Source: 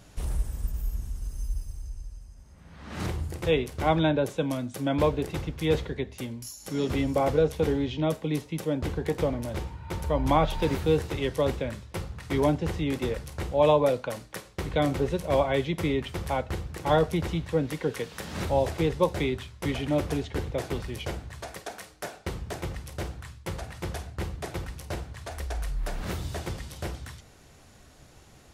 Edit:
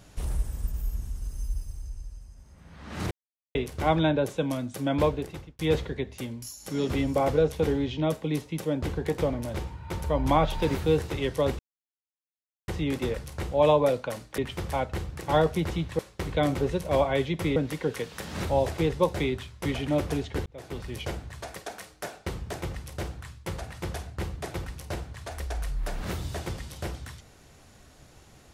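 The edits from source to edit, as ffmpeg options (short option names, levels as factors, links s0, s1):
-filter_complex "[0:a]asplit=10[s0][s1][s2][s3][s4][s5][s6][s7][s8][s9];[s0]atrim=end=3.11,asetpts=PTS-STARTPTS,afade=t=out:st=3.106:d=0.004:c=hsin[s10];[s1]atrim=start=3.11:end=3.55,asetpts=PTS-STARTPTS,volume=0[s11];[s2]atrim=start=3.55:end=5.59,asetpts=PTS-STARTPTS,afade=t=in:d=0.004:c=hsin,afade=t=out:st=1.49:d=0.55[s12];[s3]atrim=start=5.59:end=11.59,asetpts=PTS-STARTPTS,afade=t=in:d=0.004:c=hsin,afade=t=out:st=5.996:d=0.004:c=hsin[s13];[s4]atrim=start=11.59:end=12.68,asetpts=PTS-STARTPTS,volume=0[s14];[s5]atrim=start=12.68:end=14.382,asetpts=PTS-STARTPTS,afade=t=in:d=0.004:c=hsin[s15];[s6]atrim=start=15.948:end=17.562[s16];[s7]atrim=start=14.378:end=15.952[s17];[s8]atrim=start=17.558:end=20.46,asetpts=PTS-STARTPTS,afade=t=out:st=2.898:d=0.004:c=hsin[s18];[s9]atrim=start=20.46,asetpts=PTS-STARTPTS,afade=t=in:d=0.51[s19];[s10][s11][s12][s13][s14][s15]concat=n=6:v=0:a=1[s20];[s20][s16]acrossfade=d=0.004:c1=hsin:c2=hsin[s21];[s21][s17]acrossfade=d=0.004:c1=hsin:c2=hsin[s22];[s18][s19]concat=n=2:v=0:a=1[s23];[s22][s23]acrossfade=d=0.004:c1=hsin:c2=hsin"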